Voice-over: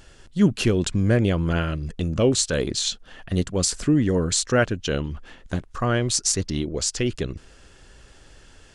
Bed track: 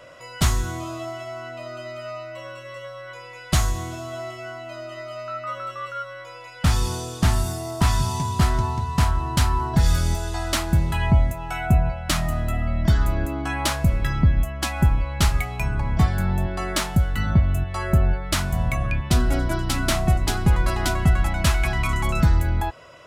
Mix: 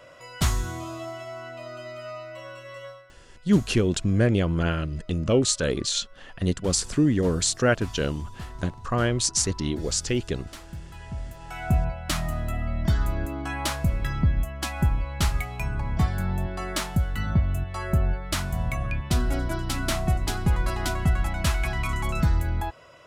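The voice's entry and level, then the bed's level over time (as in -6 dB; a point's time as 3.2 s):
3.10 s, -1.5 dB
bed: 2.9 s -3.5 dB
3.11 s -19.5 dB
11.08 s -19.5 dB
11.7 s -4.5 dB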